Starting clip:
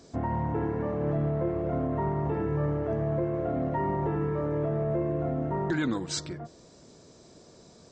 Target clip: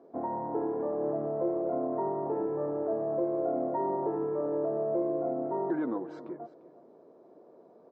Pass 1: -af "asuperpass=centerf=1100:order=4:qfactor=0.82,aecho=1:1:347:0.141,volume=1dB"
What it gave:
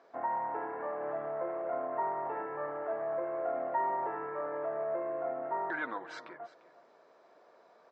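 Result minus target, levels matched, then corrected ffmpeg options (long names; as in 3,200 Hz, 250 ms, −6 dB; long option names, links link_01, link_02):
1,000 Hz band +5.5 dB
-af "asuperpass=centerf=540:order=4:qfactor=0.82,aecho=1:1:347:0.141,volume=1dB"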